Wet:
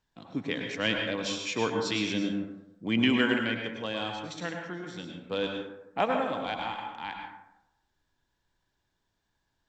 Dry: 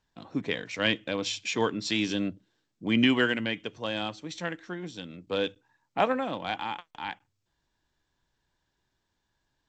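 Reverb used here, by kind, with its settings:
dense smooth reverb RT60 0.86 s, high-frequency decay 0.45×, pre-delay 90 ms, DRR 2.5 dB
level −2.5 dB

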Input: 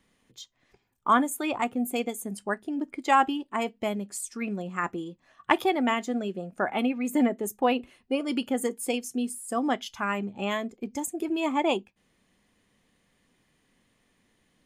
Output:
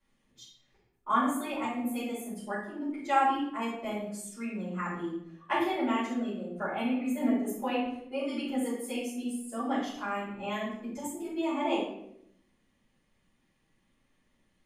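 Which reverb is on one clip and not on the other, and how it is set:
rectangular room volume 170 cubic metres, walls mixed, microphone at 5.2 metres
level −20 dB

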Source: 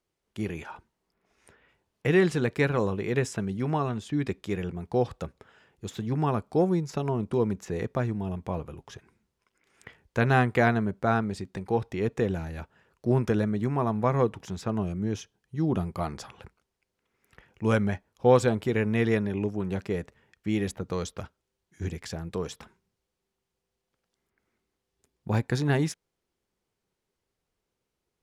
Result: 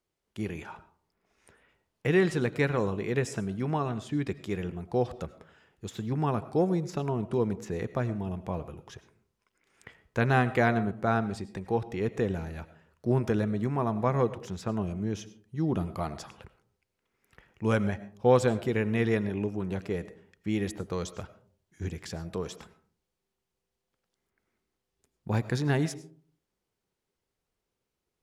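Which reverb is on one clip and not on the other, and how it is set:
comb and all-pass reverb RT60 0.49 s, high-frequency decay 0.35×, pre-delay 60 ms, DRR 15 dB
level −2 dB

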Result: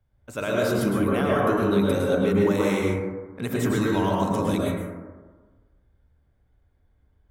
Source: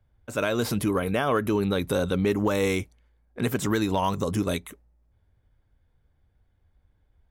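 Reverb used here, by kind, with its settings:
dense smooth reverb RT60 1.4 s, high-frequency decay 0.25×, pre-delay 95 ms, DRR −4 dB
level −4 dB

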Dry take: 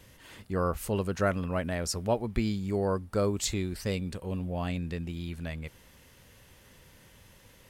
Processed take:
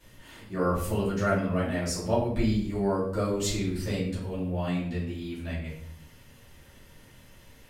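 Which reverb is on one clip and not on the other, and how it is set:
rectangular room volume 120 cubic metres, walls mixed, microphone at 2.6 metres
level −8.5 dB

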